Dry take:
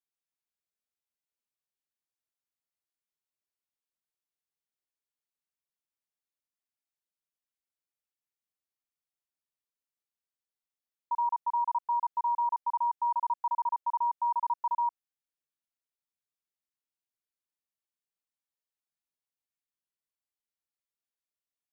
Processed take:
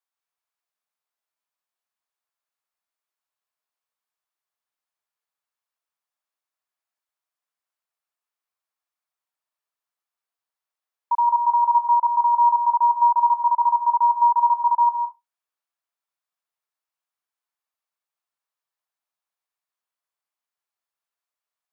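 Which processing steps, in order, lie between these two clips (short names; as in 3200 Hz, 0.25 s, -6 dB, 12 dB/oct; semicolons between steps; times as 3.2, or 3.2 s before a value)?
HPF 740 Hz 6 dB/oct; bell 1000 Hz +11.5 dB 1.7 oct; on a send: reverb RT60 0.20 s, pre-delay 0.152 s, DRR 3.5 dB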